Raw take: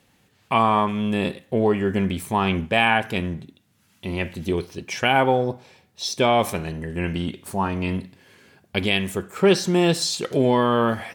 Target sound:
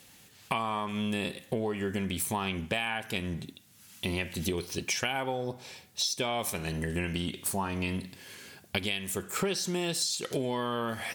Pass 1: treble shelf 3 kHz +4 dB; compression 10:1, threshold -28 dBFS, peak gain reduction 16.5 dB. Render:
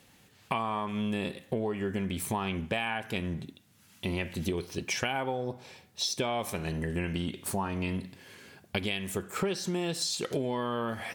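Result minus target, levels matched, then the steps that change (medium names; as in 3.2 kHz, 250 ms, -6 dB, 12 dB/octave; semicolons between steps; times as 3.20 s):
8 kHz band -3.0 dB
change: treble shelf 3 kHz +13 dB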